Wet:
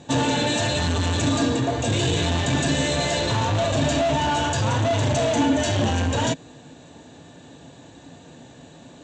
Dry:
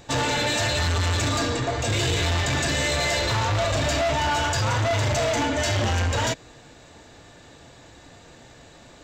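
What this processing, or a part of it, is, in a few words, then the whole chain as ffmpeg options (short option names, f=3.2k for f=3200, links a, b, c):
car door speaker: -af "highpass=86,equalizer=f=160:t=q:w=4:g=7,equalizer=f=260:t=q:w=4:g=8,equalizer=f=1.3k:t=q:w=4:g=-7,equalizer=f=2.1k:t=q:w=4:g=-8,equalizer=f=5k:t=q:w=4:g=-9,lowpass=f=8.3k:w=0.5412,lowpass=f=8.3k:w=1.3066,volume=2dB"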